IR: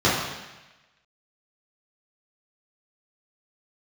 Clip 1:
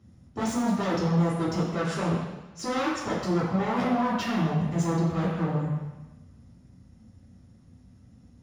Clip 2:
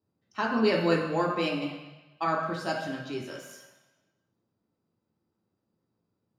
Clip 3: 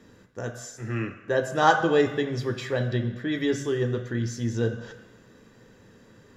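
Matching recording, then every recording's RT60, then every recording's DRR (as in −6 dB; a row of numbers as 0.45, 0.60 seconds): 1; 1.1, 1.1, 1.1 seconds; −9.5, −1.5, 6.0 decibels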